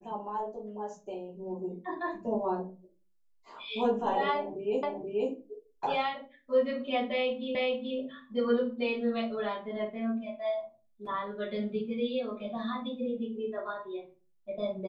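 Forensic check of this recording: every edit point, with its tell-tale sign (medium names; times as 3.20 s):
4.83 s: repeat of the last 0.48 s
7.55 s: repeat of the last 0.43 s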